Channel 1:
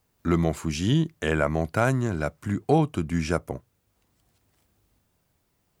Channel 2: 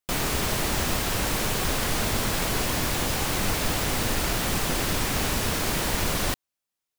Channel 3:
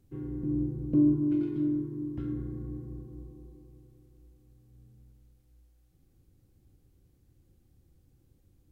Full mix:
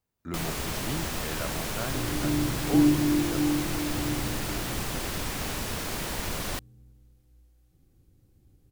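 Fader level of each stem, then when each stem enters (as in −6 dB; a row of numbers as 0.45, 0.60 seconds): −13.0, −6.5, +2.5 decibels; 0.00, 0.25, 1.80 seconds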